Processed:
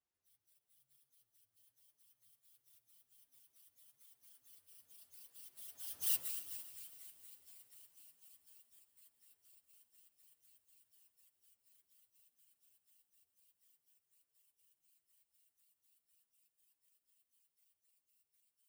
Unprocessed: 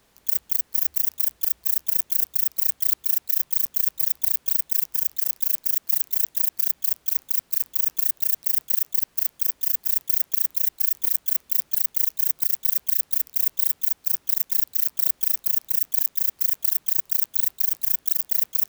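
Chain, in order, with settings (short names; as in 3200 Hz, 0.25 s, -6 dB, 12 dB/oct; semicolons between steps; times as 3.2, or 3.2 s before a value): pitch shift by moving bins +9 st; Doppler pass-by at 6.12, 18 m/s, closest 1.1 m; multi-head echo 0.137 s, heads all three, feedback 49%, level -19 dB; gain +9.5 dB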